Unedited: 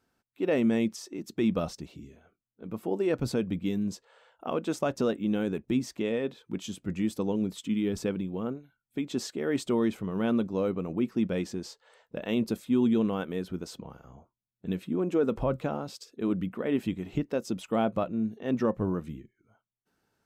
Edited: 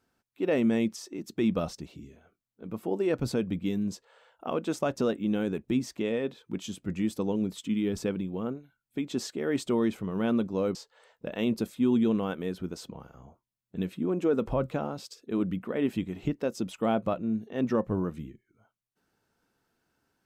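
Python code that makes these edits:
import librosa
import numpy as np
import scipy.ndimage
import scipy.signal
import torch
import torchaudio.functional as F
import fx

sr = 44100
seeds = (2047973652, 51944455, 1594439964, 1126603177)

y = fx.edit(x, sr, fx.cut(start_s=10.75, length_s=0.9), tone=tone)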